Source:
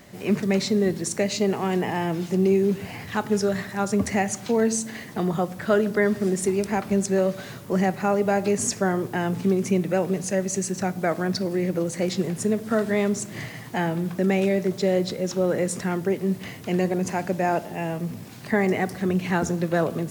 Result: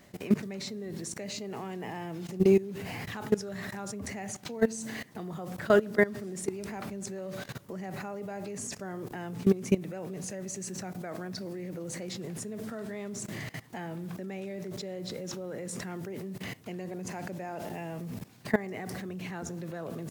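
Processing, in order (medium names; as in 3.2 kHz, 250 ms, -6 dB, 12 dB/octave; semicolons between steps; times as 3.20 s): level held to a coarse grid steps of 19 dB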